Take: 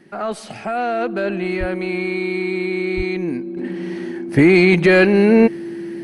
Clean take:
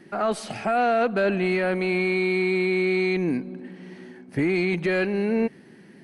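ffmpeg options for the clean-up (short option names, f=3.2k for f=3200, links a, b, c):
-filter_complex "[0:a]bandreject=f=340:w=30,asplit=3[a][b][c];[a]afade=t=out:st=1.59:d=0.02[d];[b]highpass=f=140:w=0.5412,highpass=f=140:w=1.3066,afade=t=in:st=1.59:d=0.02,afade=t=out:st=1.71:d=0.02[e];[c]afade=t=in:st=1.71:d=0.02[f];[d][e][f]amix=inputs=3:normalize=0,asplit=3[g][h][i];[g]afade=t=out:st=2.96:d=0.02[j];[h]highpass=f=140:w=0.5412,highpass=f=140:w=1.3066,afade=t=in:st=2.96:d=0.02,afade=t=out:st=3.08:d=0.02[k];[i]afade=t=in:st=3.08:d=0.02[l];[j][k][l]amix=inputs=3:normalize=0,asetnsamples=n=441:p=0,asendcmd='3.57 volume volume -11.5dB',volume=0dB"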